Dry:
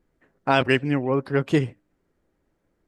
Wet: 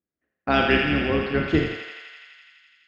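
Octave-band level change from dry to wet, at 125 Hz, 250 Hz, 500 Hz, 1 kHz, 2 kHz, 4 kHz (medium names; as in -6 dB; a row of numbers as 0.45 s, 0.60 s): -2.5 dB, +0.5 dB, -0.5 dB, -0.5 dB, +3.5 dB, +3.5 dB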